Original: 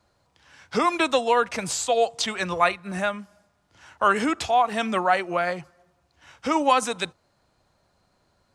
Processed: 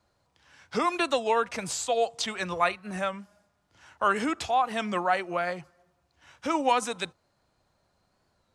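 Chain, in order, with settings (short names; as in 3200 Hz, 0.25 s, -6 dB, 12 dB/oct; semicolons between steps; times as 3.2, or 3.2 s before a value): record warp 33 1/3 rpm, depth 100 cents; gain -4.5 dB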